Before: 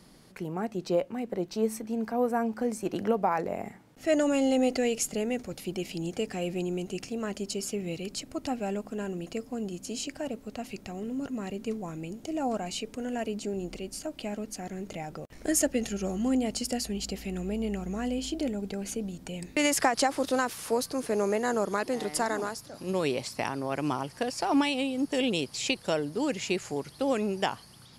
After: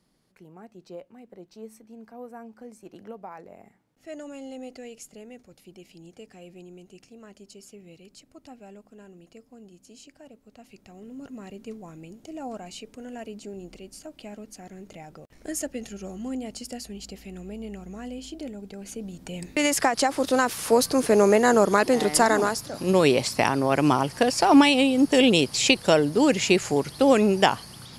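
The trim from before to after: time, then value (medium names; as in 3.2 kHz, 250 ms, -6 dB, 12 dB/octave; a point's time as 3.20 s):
10.39 s -14 dB
11.32 s -5.5 dB
18.73 s -5.5 dB
19.37 s +2.5 dB
20.01 s +2.5 dB
20.89 s +9.5 dB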